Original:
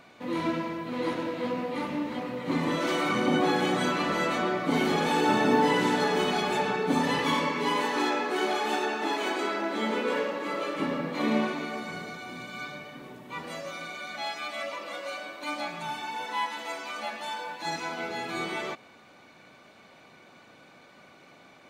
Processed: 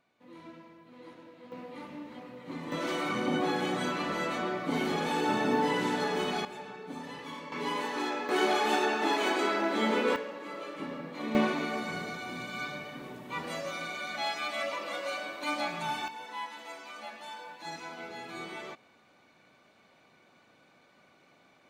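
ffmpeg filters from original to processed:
ffmpeg -i in.wav -af "asetnsamples=nb_out_samples=441:pad=0,asendcmd='1.52 volume volume -12dB;2.72 volume volume -5dB;6.45 volume volume -16dB;7.52 volume volume -6dB;8.29 volume volume 1dB;10.16 volume volume -9dB;11.35 volume volume 1dB;16.08 volume volume -8.5dB',volume=-20dB" out.wav

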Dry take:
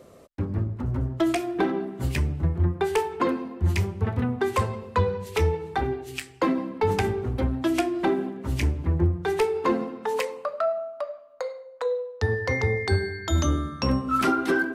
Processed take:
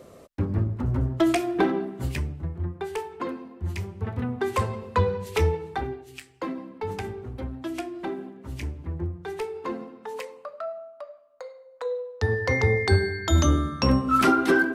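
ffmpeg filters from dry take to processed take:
ffmpeg -i in.wav -af "volume=21.5dB,afade=type=out:start_time=1.62:duration=0.78:silence=0.334965,afade=type=in:start_time=3.81:duration=1.05:silence=0.398107,afade=type=out:start_time=5.44:duration=0.62:silence=0.354813,afade=type=in:start_time=11.52:duration=1.21:silence=0.266073" out.wav

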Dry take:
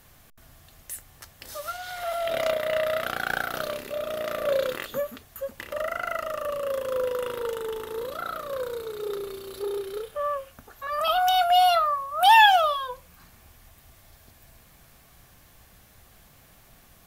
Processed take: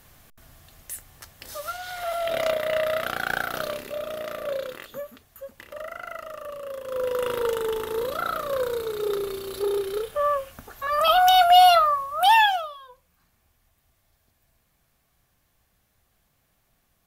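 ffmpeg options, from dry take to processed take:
ffmpeg -i in.wav -af "volume=12.5dB,afade=type=out:start_time=3.67:duration=1:silence=0.421697,afade=type=in:start_time=6.83:duration=0.5:silence=0.266073,afade=type=out:start_time=11.68:duration=0.69:silence=0.446684,afade=type=out:start_time=12.37:duration=0.32:silence=0.251189" out.wav

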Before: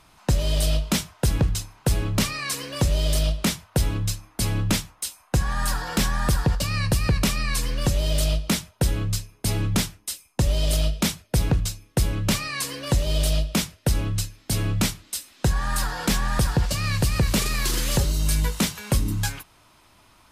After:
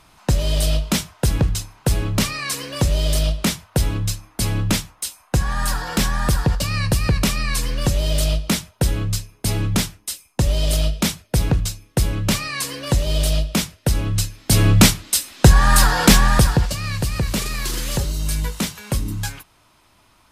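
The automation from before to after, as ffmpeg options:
ffmpeg -i in.wav -af "volume=11.5dB,afade=type=in:start_time=14.03:duration=0.79:silence=0.375837,afade=type=out:start_time=16.07:duration=0.69:silence=0.251189" out.wav

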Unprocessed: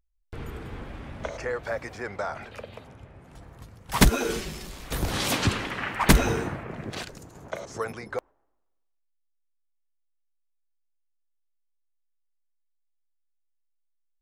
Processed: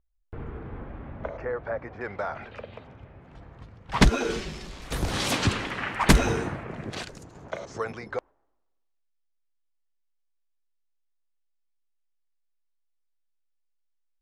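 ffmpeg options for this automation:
ffmpeg -i in.wav -af "asetnsamples=nb_out_samples=441:pad=0,asendcmd='2.01 lowpass f 3400;4.02 lowpass f 5800;4.82 lowpass f 9700;7.24 lowpass f 5700',lowpass=1500" out.wav

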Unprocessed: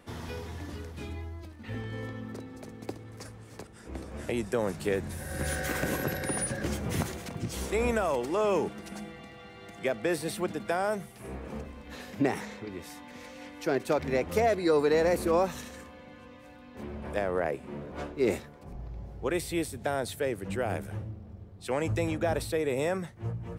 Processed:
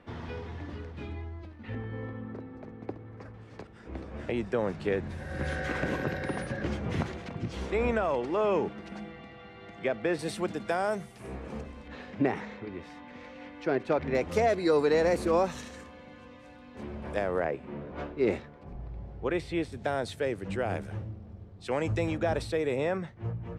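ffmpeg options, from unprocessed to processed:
ffmpeg -i in.wav -af "asetnsamples=nb_out_samples=441:pad=0,asendcmd='1.75 lowpass f 1800;3.34 lowpass f 3400;10.19 lowpass f 8100;11.88 lowpass f 3000;14.15 lowpass f 7800;17.45 lowpass f 3400;19.72 lowpass f 6100;22.76 lowpass f 3700',lowpass=3100" out.wav

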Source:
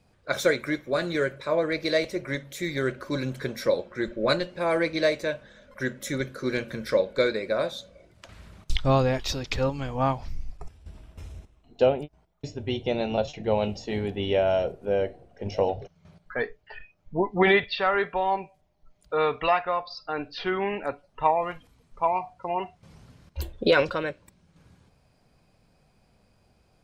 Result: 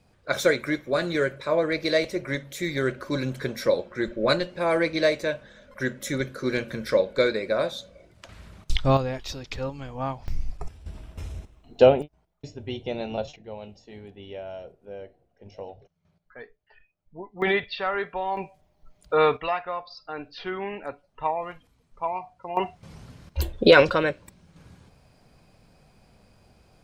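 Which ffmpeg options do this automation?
ffmpeg -i in.wav -af "asetnsamples=nb_out_samples=441:pad=0,asendcmd='8.97 volume volume -5.5dB;10.28 volume volume 5.5dB;12.02 volume volume -4dB;13.36 volume volume -14.5dB;17.42 volume volume -3.5dB;18.37 volume volume 4.5dB;19.37 volume volume -4.5dB;22.57 volume volume 6dB',volume=1.5dB" out.wav

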